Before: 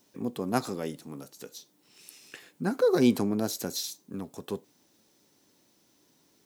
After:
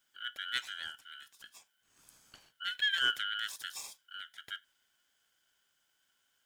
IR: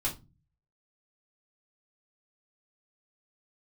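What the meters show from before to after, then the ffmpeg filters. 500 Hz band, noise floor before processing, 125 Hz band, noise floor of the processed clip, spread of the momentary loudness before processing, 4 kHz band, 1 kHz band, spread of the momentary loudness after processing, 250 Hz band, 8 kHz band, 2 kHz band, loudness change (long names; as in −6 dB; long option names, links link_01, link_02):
−34.5 dB, −67 dBFS, below −30 dB, −77 dBFS, 22 LU, +7.0 dB, −6.5 dB, 21 LU, −38.0 dB, −9.0 dB, +8.0 dB, −6.0 dB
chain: -af "afftfilt=real='real(if(lt(b,920),b+92*(1-2*mod(floor(b/92),2)),b),0)':imag='imag(if(lt(b,920),b+92*(1-2*mod(floor(b/92),2)),b),0)':win_size=2048:overlap=0.75,adynamicequalizer=threshold=0.01:dfrequency=2900:dqfactor=1.9:tfrequency=2900:tqfactor=1.9:attack=5:release=100:ratio=0.375:range=1.5:mode=boostabove:tftype=bell,aeval=exprs='val(0)*sin(2*PI*770*n/s)':channel_layout=same,volume=-7.5dB"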